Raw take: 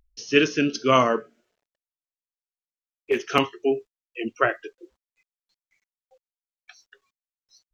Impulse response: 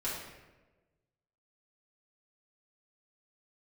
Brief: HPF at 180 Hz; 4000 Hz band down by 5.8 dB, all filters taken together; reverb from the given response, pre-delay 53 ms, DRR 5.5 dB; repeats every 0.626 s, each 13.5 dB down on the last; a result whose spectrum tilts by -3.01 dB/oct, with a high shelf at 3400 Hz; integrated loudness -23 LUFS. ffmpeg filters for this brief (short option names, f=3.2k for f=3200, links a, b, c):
-filter_complex "[0:a]highpass=180,highshelf=f=3.4k:g=-5.5,equalizer=f=4k:t=o:g=-5.5,aecho=1:1:626|1252:0.211|0.0444,asplit=2[a][b];[1:a]atrim=start_sample=2205,adelay=53[c];[b][c]afir=irnorm=-1:irlink=0,volume=-10dB[d];[a][d]amix=inputs=2:normalize=0,volume=1.5dB"